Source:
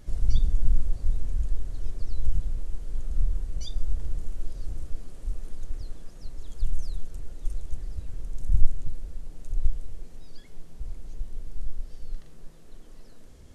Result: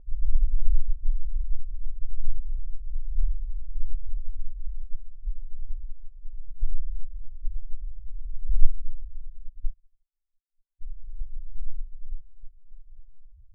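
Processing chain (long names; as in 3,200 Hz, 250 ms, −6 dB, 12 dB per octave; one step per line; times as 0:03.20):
0:09.49–0:10.82: power curve on the samples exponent 3
spectral peaks only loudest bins 2
low-pass that shuts in the quiet parts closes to 710 Hz
level +2 dB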